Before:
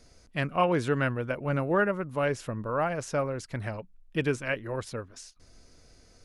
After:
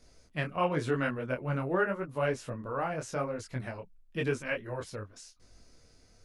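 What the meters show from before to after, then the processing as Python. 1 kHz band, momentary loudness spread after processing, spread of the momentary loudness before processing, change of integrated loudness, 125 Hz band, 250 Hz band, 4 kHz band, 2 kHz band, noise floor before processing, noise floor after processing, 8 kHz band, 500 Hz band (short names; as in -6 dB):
-4.0 dB, 13 LU, 12 LU, -3.5 dB, -3.5 dB, -4.0 dB, -4.0 dB, -3.0 dB, -58 dBFS, -61 dBFS, -3.5 dB, -3.5 dB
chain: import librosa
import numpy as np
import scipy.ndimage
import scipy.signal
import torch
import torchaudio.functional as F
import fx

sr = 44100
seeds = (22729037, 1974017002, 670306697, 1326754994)

y = fx.detune_double(x, sr, cents=31)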